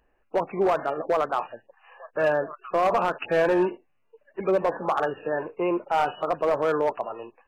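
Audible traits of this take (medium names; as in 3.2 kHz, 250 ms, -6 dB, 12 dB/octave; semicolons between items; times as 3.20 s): noise floor -68 dBFS; spectral tilt -4.0 dB/octave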